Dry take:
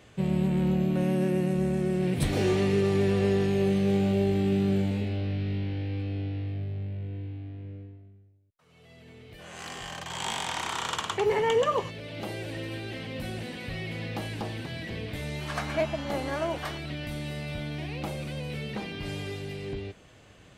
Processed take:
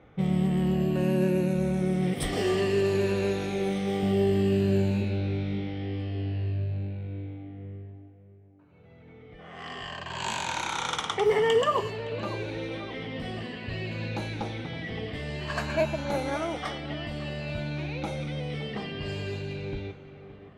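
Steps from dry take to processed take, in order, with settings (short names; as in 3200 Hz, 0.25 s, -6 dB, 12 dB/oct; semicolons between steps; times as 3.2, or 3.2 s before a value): moving spectral ripple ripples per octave 1.4, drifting -0.55 Hz, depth 9 dB; 2.13–4.03 bell 140 Hz -9 dB 1.6 oct; low-pass opened by the level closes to 1500 Hz, open at -25 dBFS; tape echo 0.567 s, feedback 56%, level -12 dB, low-pass 1600 Hz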